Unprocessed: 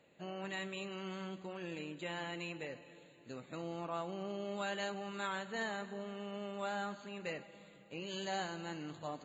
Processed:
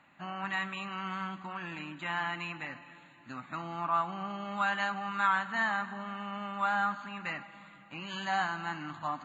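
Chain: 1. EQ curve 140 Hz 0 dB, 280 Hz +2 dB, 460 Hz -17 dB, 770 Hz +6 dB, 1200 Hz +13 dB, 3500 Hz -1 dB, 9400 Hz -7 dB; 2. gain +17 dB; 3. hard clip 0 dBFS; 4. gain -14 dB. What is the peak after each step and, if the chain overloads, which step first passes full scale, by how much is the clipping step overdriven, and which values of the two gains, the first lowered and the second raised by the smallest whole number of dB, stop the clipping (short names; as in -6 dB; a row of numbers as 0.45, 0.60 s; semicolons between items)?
-19.0, -2.0, -2.0, -16.0 dBFS; no overload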